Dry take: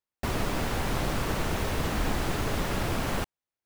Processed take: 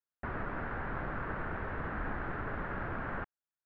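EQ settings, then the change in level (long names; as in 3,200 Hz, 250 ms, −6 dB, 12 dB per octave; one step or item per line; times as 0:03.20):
transistor ladder low-pass 1,800 Hz, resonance 55%
0.0 dB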